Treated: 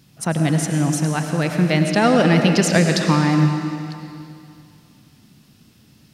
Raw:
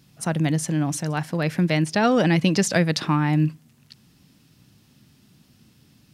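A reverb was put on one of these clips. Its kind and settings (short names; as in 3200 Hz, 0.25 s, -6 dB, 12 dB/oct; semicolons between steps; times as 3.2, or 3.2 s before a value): digital reverb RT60 2.5 s, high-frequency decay 0.95×, pre-delay 60 ms, DRR 4 dB; gain +3 dB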